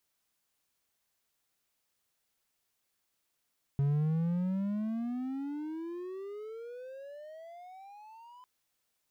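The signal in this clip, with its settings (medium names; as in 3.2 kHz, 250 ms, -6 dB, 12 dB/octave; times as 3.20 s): gliding synth tone triangle, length 4.65 s, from 138 Hz, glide +34.5 st, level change -26 dB, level -23 dB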